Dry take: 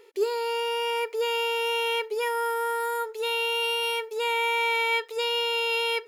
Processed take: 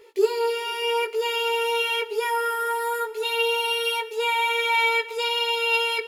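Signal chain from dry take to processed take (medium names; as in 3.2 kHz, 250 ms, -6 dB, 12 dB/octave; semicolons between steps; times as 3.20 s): chorus voices 4, 0.54 Hz, delay 17 ms, depth 1.8 ms; on a send: reverberation RT60 6.2 s, pre-delay 31 ms, DRR 17 dB; on the sum: trim +6 dB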